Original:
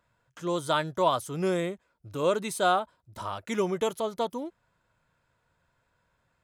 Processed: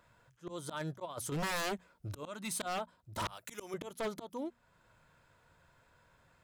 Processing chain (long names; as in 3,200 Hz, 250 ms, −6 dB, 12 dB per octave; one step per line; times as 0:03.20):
0:03.27–0:03.74: RIAA equalisation recording
volume swells 689 ms
0:00.77–0:01.32: compressor whose output falls as the input rises −45 dBFS, ratio −0.5
0:02.23–0:02.66: parametric band 430 Hz −14.5 dB 0.54 octaves
wave folding −36 dBFS
mains-hum notches 60/120/180/240 Hz
level +6 dB